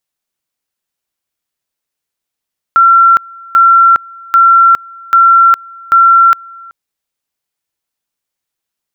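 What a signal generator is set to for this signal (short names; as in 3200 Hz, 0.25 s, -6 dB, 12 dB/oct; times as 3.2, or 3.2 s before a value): two-level tone 1360 Hz -2.5 dBFS, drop 26.5 dB, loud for 0.41 s, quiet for 0.38 s, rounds 5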